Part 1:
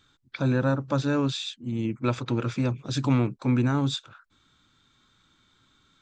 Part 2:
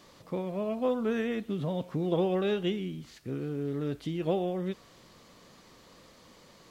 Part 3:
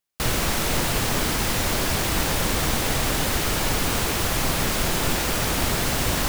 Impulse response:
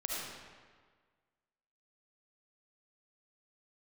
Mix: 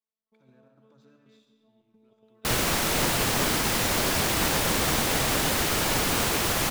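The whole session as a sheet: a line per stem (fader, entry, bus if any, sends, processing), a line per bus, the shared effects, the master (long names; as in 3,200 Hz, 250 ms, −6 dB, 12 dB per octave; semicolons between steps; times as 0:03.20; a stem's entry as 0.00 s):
0:01.03 −13 dB → 0:01.83 −23 dB, 0.00 s, bus A, send −12.5 dB, brickwall limiter −21.5 dBFS, peak gain reduction 10.5 dB; dead-zone distortion −48.5 dBFS
−10.0 dB, 0.00 s, bus A, send −20.5 dB, noise gate −43 dBFS, range −15 dB; speech leveller within 3 dB 0.5 s; phases set to zero 219 Hz
+0.5 dB, 2.25 s, no bus, no send, no processing
bus A: 0.0 dB, gate pattern ".....xx.xxxx.xx" 155 BPM −12 dB; downward compressor 3 to 1, threshold −48 dBFS, peak gain reduction 10 dB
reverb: on, RT60 1.6 s, pre-delay 30 ms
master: low-shelf EQ 79 Hz −10.5 dB; expander for the loud parts 1.5 to 1, over −46 dBFS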